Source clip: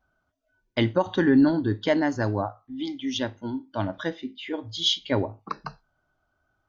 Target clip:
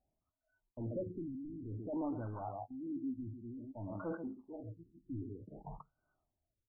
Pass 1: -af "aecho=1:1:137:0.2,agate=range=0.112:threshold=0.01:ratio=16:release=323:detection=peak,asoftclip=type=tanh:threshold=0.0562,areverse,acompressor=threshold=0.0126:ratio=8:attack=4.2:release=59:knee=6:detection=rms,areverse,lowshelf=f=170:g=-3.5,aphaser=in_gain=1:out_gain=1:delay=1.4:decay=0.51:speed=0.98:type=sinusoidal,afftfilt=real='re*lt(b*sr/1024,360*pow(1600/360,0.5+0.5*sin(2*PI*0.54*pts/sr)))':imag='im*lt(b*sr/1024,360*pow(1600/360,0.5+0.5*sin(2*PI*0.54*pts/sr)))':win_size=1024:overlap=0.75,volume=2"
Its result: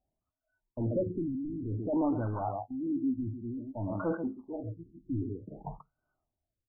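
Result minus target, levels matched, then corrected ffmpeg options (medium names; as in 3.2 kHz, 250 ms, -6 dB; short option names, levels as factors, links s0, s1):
compression: peak gain reduction -9 dB
-af "aecho=1:1:137:0.2,agate=range=0.112:threshold=0.01:ratio=16:release=323:detection=peak,asoftclip=type=tanh:threshold=0.0562,areverse,acompressor=threshold=0.00376:ratio=8:attack=4.2:release=59:knee=6:detection=rms,areverse,lowshelf=f=170:g=-3.5,aphaser=in_gain=1:out_gain=1:delay=1.4:decay=0.51:speed=0.98:type=sinusoidal,afftfilt=real='re*lt(b*sr/1024,360*pow(1600/360,0.5+0.5*sin(2*PI*0.54*pts/sr)))':imag='im*lt(b*sr/1024,360*pow(1600/360,0.5+0.5*sin(2*PI*0.54*pts/sr)))':win_size=1024:overlap=0.75,volume=2"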